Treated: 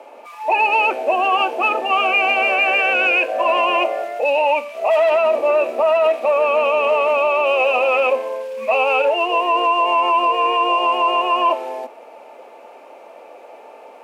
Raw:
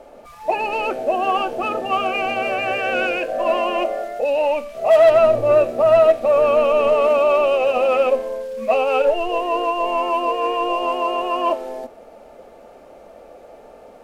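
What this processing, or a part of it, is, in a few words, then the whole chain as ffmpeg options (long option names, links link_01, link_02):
laptop speaker: -af "highpass=frequency=280:width=0.5412,highpass=frequency=280:width=1.3066,equalizer=frequency=950:width_type=o:width=0.43:gain=11,equalizer=frequency=2500:width_type=o:width=0.55:gain=11,alimiter=limit=-8.5dB:level=0:latency=1:release=36"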